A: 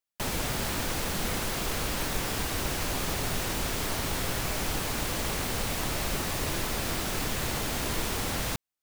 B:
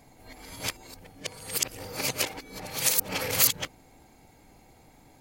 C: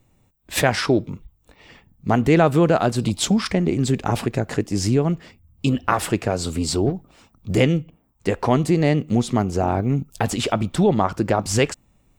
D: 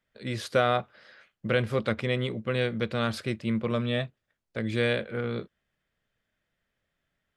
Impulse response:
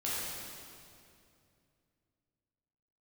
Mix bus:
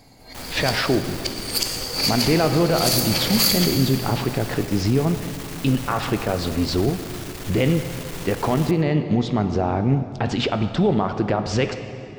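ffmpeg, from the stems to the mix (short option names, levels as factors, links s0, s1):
-filter_complex "[0:a]aeval=exprs='(tanh(25.1*val(0)+0.7)-tanh(0.7))/25.1':c=same,adelay=150,volume=0.944,asplit=2[s0][s1];[s1]volume=0.126[s2];[1:a]equalizer=f=4600:t=o:w=0.26:g=14.5,volume=1.12,asplit=2[s3][s4];[s4]volume=0.422[s5];[2:a]lowpass=f=5000:w=0.5412,lowpass=f=5000:w=1.3066,volume=1.06,asplit=2[s6][s7];[s7]volume=0.158[s8];[s3][s6]amix=inputs=2:normalize=0,alimiter=limit=0.237:level=0:latency=1:release=69,volume=1[s9];[4:a]atrim=start_sample=2205[s10];[s5][s8]amix=inputs=2:normalize=0[s11];[s11][s10]afir=irnorm=-1:irlink=0[s12];[s2]aecho=0:1:107|214|321|428:1|0.25|0.0625|0.0156[s13];[s0][s9][s12][s13]amix=inputs=4:normalize=0"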